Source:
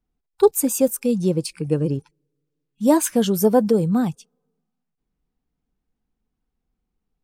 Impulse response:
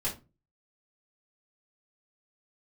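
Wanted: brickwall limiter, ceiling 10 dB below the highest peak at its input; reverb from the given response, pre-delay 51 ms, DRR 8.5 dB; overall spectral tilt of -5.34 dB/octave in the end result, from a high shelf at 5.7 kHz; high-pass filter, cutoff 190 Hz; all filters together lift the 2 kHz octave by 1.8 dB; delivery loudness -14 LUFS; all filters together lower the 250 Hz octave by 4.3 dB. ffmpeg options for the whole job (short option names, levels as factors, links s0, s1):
-filter_complex "[0:a]highpass=190,equalizer=f=250:t=o:g=-3.5,equalizer=f=2000:t=o:g=3.5,highshelf=f=5700:g=-8,alimiter=limit=0.188:level=0:latency=1,asplit=2[s0][s1];[1:a]atrim=start_sample=2205,adelay=51[s2];[s1][s2]afir=irnorm=-1:irlink=0,volume=0.211[s3];[s0][s3]amix=inputs=2:normalize=0,volume=3.55"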